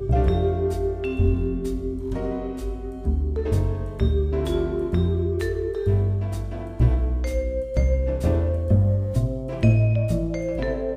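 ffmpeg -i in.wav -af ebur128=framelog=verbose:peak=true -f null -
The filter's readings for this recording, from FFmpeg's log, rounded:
Integrated loudness:
  I:         -24.0 LUFS
  Threshold: -34.0 LUFS
Loudness range:
  LRA:         3.5 LU
  Threshold: -44.3 LUFS
  LRA low:   -26.0 LUFS
  LRA high:  -22.5 LUFS
True peak:
  Peak:       -5.9 dBFS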